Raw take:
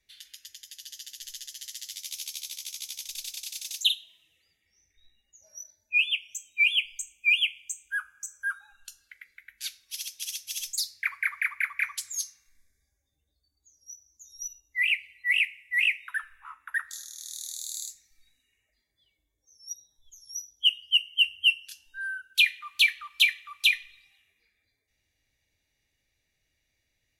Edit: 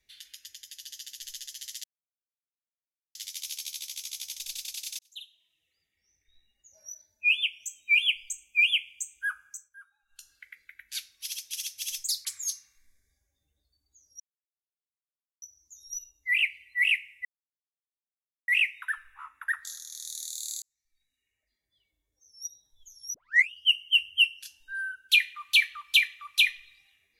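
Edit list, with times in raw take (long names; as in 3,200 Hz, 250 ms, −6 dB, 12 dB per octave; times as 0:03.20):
0:01.84: splice in silence 1.31 s
0:03.68–0:05.60: fade in
0:08.14–0:09.00: duck −20 dB, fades 0.25 s
0:10.94–0:11.96: remove
0:13.91: splice in silence 1.22 s
0:15.74: splice in silence 1.23 s
0:17.88–0:19.72: fade in
0:20.40: tape start 0.37 s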